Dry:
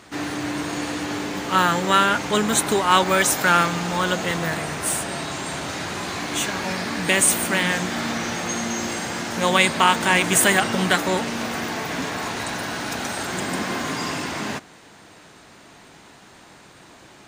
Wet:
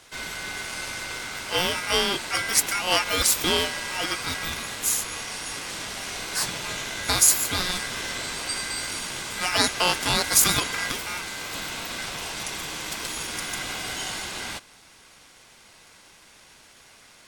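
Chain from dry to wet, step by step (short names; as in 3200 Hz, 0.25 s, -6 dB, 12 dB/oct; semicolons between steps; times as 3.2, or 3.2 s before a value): high shelf 2500 Hz +10 dB; ring modulator 1800 Hz; 10.91–11.53 one-sided clip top -26 dBFS, bottom -18.5 dBFS; gain -5.5 dB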